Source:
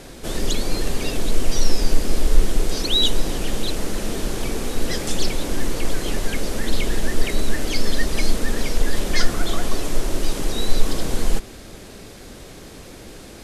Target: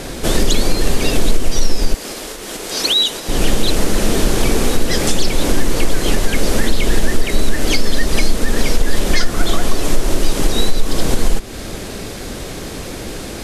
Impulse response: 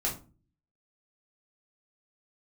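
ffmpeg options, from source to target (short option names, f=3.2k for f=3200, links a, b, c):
-filter_complex "[0:a]asplit=2[a][b];[b]acompressor=threshold=-23dB:ratio=6,volume=0.5dB[c];[a][c]amix=inputs=2:normalize=0,alimiter=limit=-8dB:level=0:latency=1:release=240,asettb=1/sr,asplit=3[d][e][f];[d]atrim=end=1.944[g];[e]atrim=start=1.94:end=3.29,asetpts=PTS-STARTPTS,afade=t=in:d=0.004:c=qsin,afade=t=out:st=1.346:d=0.004:c=qsin,highpass=f=690:p=1[h];[f]atrim=start=3.286[i];[g][h]acrossfade=d=0.004:c1=hsin:c2=qsin[j];[j][i]acrossfade=d=0.004:c1=qsin:c2=hsin,volume=6dB"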